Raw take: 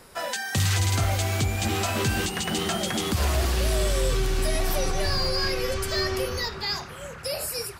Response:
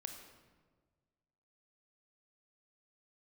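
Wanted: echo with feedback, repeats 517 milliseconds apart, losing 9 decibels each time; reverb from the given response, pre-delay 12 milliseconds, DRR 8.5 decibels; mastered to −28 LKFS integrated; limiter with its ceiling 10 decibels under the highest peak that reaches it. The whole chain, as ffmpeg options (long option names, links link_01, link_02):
-filter_complex "[0:a]alimiter=level_in=2.5dB:limit=-24dB:level=0:latency=1,volume=-2.5dB,aecho=1:1:517|1034|1551|2068:0.355|0.124|0.0435|0.0152,asplit=2[link_01][link_02];[1:a]atrim=start_sample=2205,adelay=12[link_03];[link_02][link_03]afir=irnorm=-1:irlink=0,volume=-5.5dB[link_04];[link_01][link_04]amix=inputs=2:normalize=0,volume=4.5dB"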